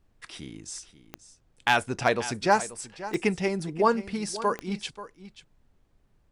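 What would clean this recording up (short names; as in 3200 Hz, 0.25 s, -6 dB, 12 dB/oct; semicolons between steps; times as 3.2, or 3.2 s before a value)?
clip repair -9.5 dBFS; de-click; expander -56 dBFS, range -21 dB; inverse comb 0.535 s -15 dB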